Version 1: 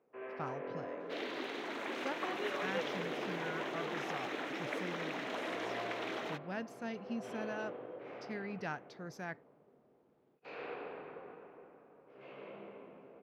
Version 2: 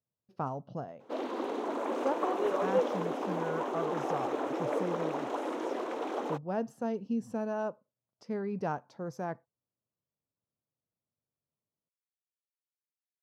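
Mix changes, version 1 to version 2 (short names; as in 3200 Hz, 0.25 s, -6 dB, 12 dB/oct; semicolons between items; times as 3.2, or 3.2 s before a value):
first sound: muted; master: add graphic EQ 125/250/500/1000/2000/4000/8000 Hz +7/+5/+9/+9/-9/-5/+5 dB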